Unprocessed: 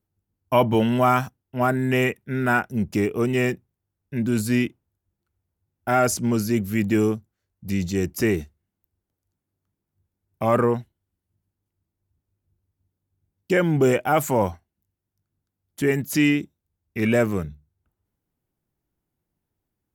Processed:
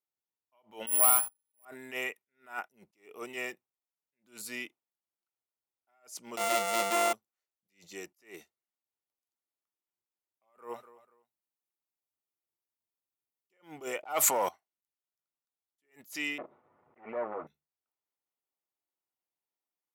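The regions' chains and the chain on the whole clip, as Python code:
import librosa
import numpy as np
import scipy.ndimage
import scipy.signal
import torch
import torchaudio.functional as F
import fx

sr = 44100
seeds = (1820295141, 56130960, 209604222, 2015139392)

y = fx.chain(x, sr, fx.peak_eq(hz=210.0, db=-7.0, octaves=0.27),
    fx.overload_stage(gain_db=15.0),
    fx.resample_bad(factor=4, down='filtered', up='zero_stuff'), at=(0.87, 1.65))
y = fx.chain(y, sr, fx.sample_sort(block=64),
    fx.comb(ms=5.7, depth=0.85),
    fx.env_flatten(amount_pct=70), at=(6.37, 7.13))
y = fx.chain(y, sr, fx.high_shelf(hz=8800.0, db=6.5),
    fx.echo_feedback(ms=244, feedback_pct=26, wet_db=-21.5), at=(10.47, 13.52))
y = fx.chain(y, sr, fx.env_lowpass(base_hz=860.0, full_db=-18.5),
    fx.leveller(passes=1),
    fx.env_flatten(amount_pct=100), at=(14.03, 14.49))
y = fx.chain(y, sr, fx.lower_of_two(delay_ms=8.2),
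    fx.lowpass(hz=1500.0, slope=24),
    fx.env_flatten(amount_pct=70), at=(16.38, 17.47))
y = scipy.signal.sosfilt(scipy.signal.butter(2, 680.0, 'highpass', fs=sr, output='sos'), y)
y = fx.notch(y, sr, hz=1600.0, q=6.4)
y = fx.attack_slew(y, sr, db_per_s=190.0)
y = y * 10.0 ** (-8.5 / 20.0)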